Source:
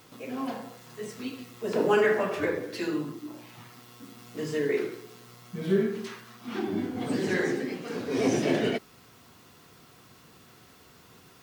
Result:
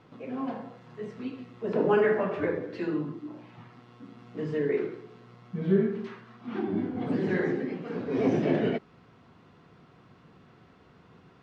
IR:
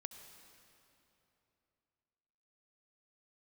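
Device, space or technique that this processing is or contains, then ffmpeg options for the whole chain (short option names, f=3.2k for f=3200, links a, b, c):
phone in a pocket: -af "lowpass=3.7k,equalizer=f=170:t=o:w=0.48:g=4.5,highshelf=f=2.5k:g=-11"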